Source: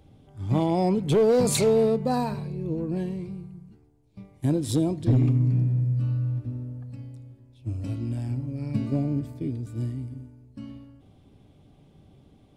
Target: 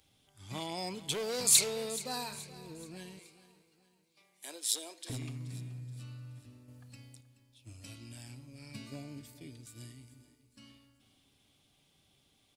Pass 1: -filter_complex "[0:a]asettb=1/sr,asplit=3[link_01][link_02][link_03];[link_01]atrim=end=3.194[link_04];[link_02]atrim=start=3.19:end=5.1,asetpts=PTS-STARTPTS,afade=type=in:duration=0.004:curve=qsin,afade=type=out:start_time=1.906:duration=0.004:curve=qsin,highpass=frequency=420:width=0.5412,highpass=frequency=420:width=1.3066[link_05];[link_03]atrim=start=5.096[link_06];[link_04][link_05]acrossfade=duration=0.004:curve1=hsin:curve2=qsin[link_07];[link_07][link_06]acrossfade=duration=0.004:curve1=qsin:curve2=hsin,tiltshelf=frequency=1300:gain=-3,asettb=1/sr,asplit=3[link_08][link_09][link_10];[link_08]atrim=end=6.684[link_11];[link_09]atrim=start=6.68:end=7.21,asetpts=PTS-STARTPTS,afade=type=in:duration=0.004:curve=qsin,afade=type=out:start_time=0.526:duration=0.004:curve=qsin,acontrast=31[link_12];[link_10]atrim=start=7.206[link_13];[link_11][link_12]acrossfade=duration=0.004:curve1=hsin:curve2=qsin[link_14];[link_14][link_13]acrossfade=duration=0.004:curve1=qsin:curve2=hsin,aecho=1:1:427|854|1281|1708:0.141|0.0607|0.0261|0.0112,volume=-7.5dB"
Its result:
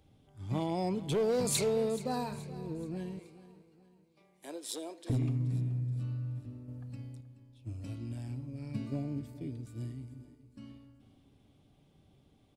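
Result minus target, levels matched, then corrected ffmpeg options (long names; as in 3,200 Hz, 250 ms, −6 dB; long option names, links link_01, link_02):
1,000 Hz band +6.0 dB
-filter_complex "[0:a]asettb=1/sr,asplit=3[link_01][link_02][link_03];[link_01]atrim=end=3.194[link_04];[link_02]atrim=start=3.19:end=5.1,asetpts=PTS-STARTPTS,afade=type=in:duration=0.004:curve=qsin,afade=type=out:start_time=1.906:duration=0.004:curve=qsin,highpass=frequency=420:width=0.5412,highpass=frequency=420:width=1.3066[link_05];[link_03]atrim=start=5.096[link_06];[link_04][link_05]acrossfade=duration=0.004:curve1=hsin:curve2=qsin[link_07];[link_07][link_06]acrossfade=duration=0.004:curve1=qsin:curve2=hsin,tiltshelf=frequency=1300:gain=-13.5,asettb=1/sr,asplit=3[link_08][link_09][link_10];[link_08]atrim=end=6.684[link_11];[link_09]atrim=start=6.68:end=7.21,asetpts=PTS-STARTPTS,afade=type=in:duration=0.004:curve=qsin,afade=type=out:start_time=0.526:duration=0.004:curve=qsin,acontrast=31[link_12];[link_10]atrim=start=7.206[link_13];[link_11][link_12]acrossfade=duration=0.004:curve1=hsin:curve2=qsin[link_14];[link_14][link_13]acrossfade=duration=0.004:curve1=qsin:curve2=hsin,aecho=1:1:427|854|1281|1708:0.141|0.0607|0.0261|0.0112,volume=-7.5dB"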